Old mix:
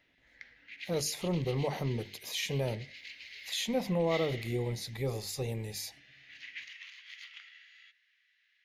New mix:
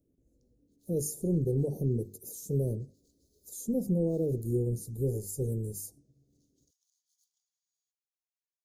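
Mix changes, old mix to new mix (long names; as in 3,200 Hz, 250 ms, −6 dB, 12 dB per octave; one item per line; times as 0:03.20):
speech +5.0 dB
master: add elliptic band-stop filter 420–8,000 Hz, stop band 70 dB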